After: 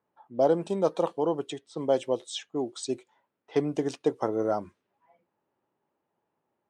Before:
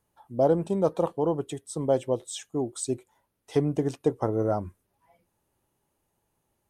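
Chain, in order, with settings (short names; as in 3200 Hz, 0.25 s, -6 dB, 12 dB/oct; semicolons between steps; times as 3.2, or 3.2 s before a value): low-pass opened by the level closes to 1400 Hz, open at -24.5 dBFS; BPF 210–5400 Hz; high shelf 2500 Hz +10.5 dB; gain -1 dB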